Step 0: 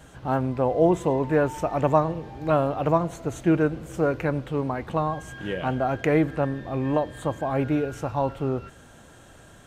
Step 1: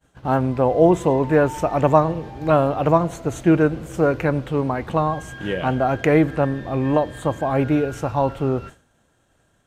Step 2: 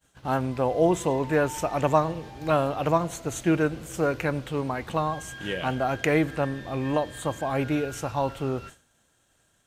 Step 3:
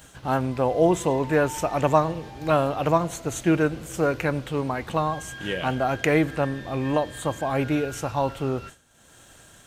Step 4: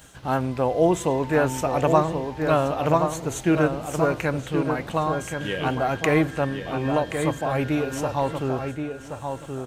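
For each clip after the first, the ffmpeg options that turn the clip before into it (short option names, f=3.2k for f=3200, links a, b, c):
-af "agate=range=-33dB:threshold=-37dB:ratio=3:detection=peak,volume=5dB"
-af "highshelf=f=2.1k:g=11.5,volume=-7.5dB"
-af "acompressor=mode=upward:threshold=-39dB:ratio=2.5,volume=2dB"
-filter_complex "[0:a]asplit=2[a][b];[b]adelay=1076,lowpass=f=2.5k:p=1,volume=-6dB,asplit=2[c][d];[d]adelay=1076,lowpass=f=2.5k:p=1,volume=0.24,asplit=2[e][f];[f]adelay=1076,lowpass=f=2.5k:p=1,volume=0.24[g];[a][c][e][g]amix=inputs=4:normalize=0"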